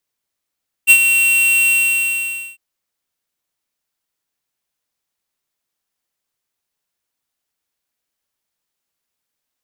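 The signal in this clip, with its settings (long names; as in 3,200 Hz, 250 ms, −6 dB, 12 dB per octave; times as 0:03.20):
note with an ADSR envelope square 2,730 Hz, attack 35 ms, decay 68 ms, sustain −8 dB, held 0.82 s, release 881 ms −5.5 dBFS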